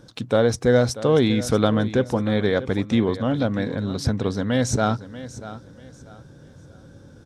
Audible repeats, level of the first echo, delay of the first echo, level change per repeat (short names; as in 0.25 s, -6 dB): 2, -15.0 dB, 0.638 s, -11.0 dB